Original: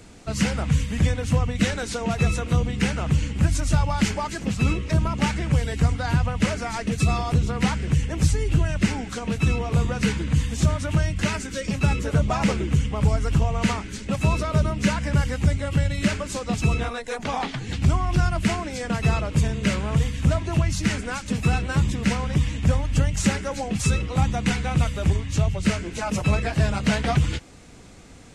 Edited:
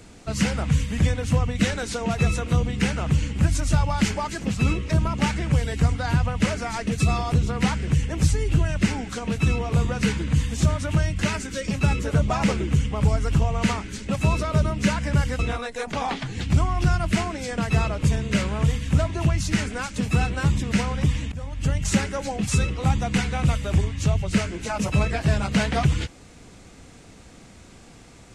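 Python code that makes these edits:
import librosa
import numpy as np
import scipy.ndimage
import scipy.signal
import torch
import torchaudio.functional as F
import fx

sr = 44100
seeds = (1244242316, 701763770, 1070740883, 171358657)

y = fx.edit(x, sr, fx.cut(start_s=15.39, length_s=1.32),
    fx.fade_in_from(start_s=22.64, length_s=0.52, floor_db=-21.0), tone=tone)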